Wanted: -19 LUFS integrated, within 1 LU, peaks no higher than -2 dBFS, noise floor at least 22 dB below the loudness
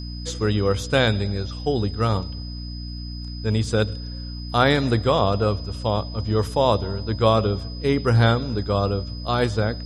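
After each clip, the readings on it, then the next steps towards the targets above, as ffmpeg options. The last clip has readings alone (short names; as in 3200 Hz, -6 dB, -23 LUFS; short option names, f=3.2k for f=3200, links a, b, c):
hum 60 Hz; harmonics up to 300 Hz; hum level -30 dBFS; steady tone 5000 Hz; tone level -39 dBFS; loudness -22.5 LUFS; peak -3.5 dBFS; loudness target -19.0 LUFS
-> -af "bandreject=f=60:t=h:w=4,bandreject=f=120:t=h:w=4,bandreject=f=180:t=h:w=4,bandreject=f=240:t=h:w=4,bandreject=f=300:t=h:w=4"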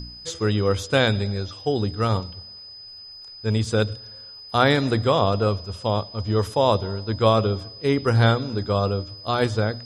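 hum none; steady tone 5000 Hz; tone level -39 dBFS
-> -af "bandreject=f=5k:w=30"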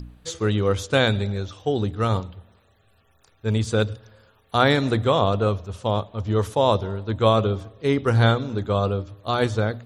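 steady tone none; loudness -22.5 LUFS; peak -3.0 dBFS; loudness target -19.0 LUFS
-> -af "volume=3.5dB,alimiter=limit=-2dB:level=0:latency=1"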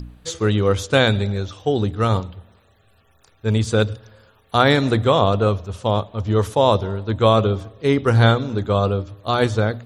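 loudness -19.5 LUFS; peak -2.0 dBFS; noise floor -57 dBFS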